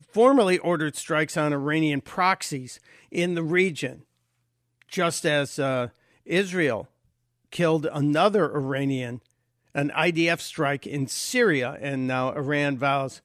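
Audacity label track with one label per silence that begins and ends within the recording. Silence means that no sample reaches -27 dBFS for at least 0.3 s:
2.590000	3.150000	silence
3.900000	4.930000	silence
5.860000	6.300000	silence
6.800000	7.530000	silence
9.160000	9.750000	silence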